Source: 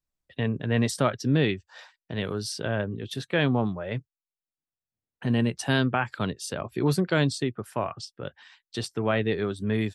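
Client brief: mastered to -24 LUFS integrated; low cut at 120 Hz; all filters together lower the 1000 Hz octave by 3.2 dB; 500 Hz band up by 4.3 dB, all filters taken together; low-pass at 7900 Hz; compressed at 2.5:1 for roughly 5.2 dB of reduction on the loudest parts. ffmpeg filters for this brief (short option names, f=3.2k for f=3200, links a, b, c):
-af "highpass=120,lowpass=7.9k,equalizer=f=500:t=o:g=7,equalizer=f=1k:t=o:g=-7.5,acompressor=threshold=-24dB:ratio=2.5,volume=6dB"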